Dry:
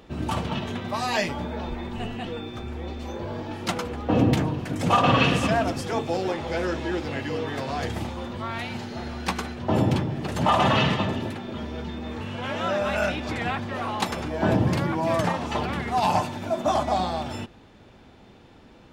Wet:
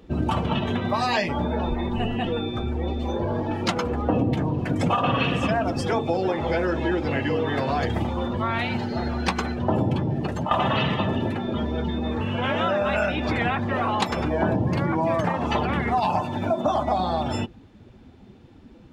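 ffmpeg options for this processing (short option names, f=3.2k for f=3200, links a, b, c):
-filter_complex "[0:a]asplit=2[a][b];[a]atrim=end=10.51,asetpts=PTS-STARTPTS,afade=t=out:st=10.11:d=0.4:silence=0.112202[c];[b]atrim=start=10.51,asetpts=PTS-STARTPTS,afade=t=in:d=0.004:c=hsin:silence=0.112202[d];[c][d]concat=n=2:v=0:a=1,acompressor=threshold=-27dB:ratio=6,afftdn=nr=13:nf=-41,volume=7.5dB"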